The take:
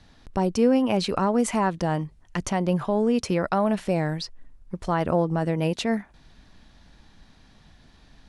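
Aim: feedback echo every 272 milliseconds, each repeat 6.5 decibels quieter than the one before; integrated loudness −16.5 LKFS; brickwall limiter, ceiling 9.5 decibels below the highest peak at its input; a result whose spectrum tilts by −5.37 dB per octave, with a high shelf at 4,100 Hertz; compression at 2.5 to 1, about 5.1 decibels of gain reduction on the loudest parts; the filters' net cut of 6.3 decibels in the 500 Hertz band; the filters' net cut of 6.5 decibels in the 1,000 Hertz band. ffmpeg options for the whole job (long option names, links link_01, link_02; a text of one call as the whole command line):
ffmpeg -i in.wav -af "equalizer=frequency=500:width_type=o:gain=-6,equalizer=frequency=1000:width_type=o:gain=-6.5,highshelf=frequency=4100:gain=4,acompressor=threshold=-27dB:ratio=2.5,alimiter=limit=-24dB:level=0:latency=1,aecho=1:1:272|544|816|1088|1360|1632:0.473|0.222|0.105|0.0491|0.0231|0.0109,volume=17dB" out.wav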